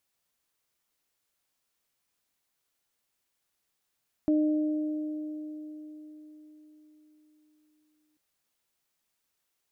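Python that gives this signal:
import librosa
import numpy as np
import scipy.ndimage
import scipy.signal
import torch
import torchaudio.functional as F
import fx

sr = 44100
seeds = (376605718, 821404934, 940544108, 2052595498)

y = fx.additive(sr, length_s=3.89, hz=305.0, level_db=-20.5, upper_db=(-11,), decay_s=4.55, upper_decays_s=(3.35,))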